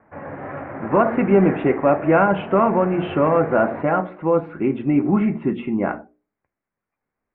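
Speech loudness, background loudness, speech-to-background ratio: -19.5 LUFS, -31.5 LUFS, 12.0 dB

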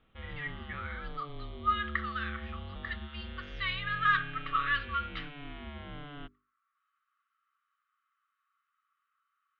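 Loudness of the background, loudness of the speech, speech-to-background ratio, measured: -44.0 LUFS, -33.5 LUFS, 10.5 dB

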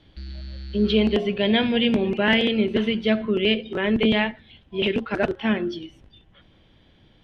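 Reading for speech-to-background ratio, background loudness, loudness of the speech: 16.5 dB, -38.5 LUFS, -22.0 LUFS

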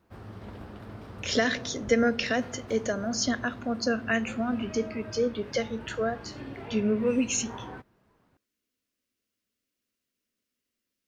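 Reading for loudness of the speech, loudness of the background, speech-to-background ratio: -28.5 LUFS, -43.0 LUFS, 14.5 dB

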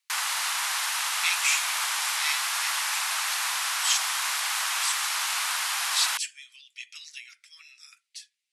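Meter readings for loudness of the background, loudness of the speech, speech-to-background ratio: -26.0 LUFS, -30.5 LUFS, -4.5 dB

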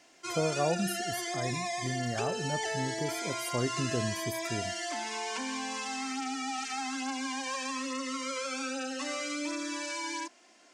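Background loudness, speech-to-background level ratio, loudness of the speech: -34.5 LUFS, -1.0 dB, -35.5 LUFS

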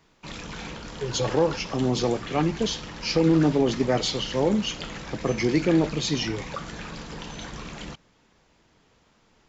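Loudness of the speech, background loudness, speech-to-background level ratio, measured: -24.5 LUFS, -37.5 LUFS, 13.0 dB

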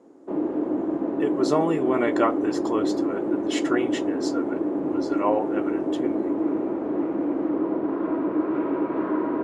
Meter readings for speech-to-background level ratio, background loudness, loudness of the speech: -2.5 dB, -26.0 LUFS, -28.5 LUFS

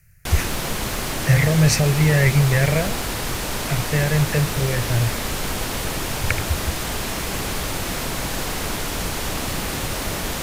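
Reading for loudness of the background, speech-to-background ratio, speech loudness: -25.5 LUFS, 5.0 dB, -20.5 LUFS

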